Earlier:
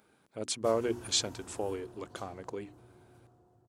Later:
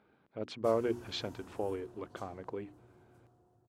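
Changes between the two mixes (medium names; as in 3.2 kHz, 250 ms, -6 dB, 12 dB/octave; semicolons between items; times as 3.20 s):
speech: add distance through air 320 m; background -3.5 dB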